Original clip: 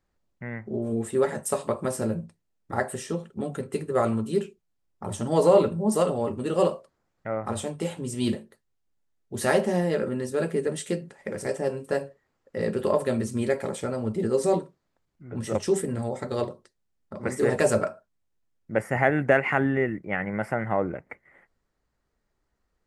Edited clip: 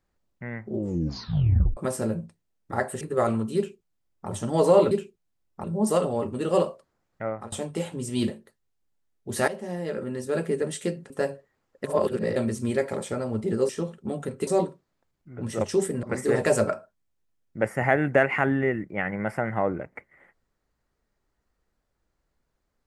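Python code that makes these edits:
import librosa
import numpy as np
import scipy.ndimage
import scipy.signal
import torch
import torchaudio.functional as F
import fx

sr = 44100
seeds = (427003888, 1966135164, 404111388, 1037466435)

y = fx.edit(x, sr, fx.tape_stop(start_s=0.71, length_s=1.06),
    fx.move(start_s=3.01, length_s=0.78, to_s=14.41),
    fx.duplicate(start_s=4.34, length_s=0.73, to_s=5.69),
    fx.fade_out_to(start_s=7.32, length_s=0.25, floor_db=-21.0),
    fx.fade_in_from(start_s=9.53, length_s=0.93, floor_db=-15.5),
    fx.cut(start_s=11.15, length_s=0.67),
    fx.reverse_span(start_s=12.56, length_s=0.52),
    fx.cut(start_s=15.97, length_s=1.2), tone=tone)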